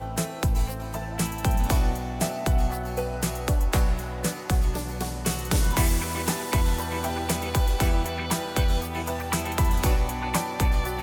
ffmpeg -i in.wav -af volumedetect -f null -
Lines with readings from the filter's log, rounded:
mean_volume: -24.3 dB
max_volume: -11.2 dB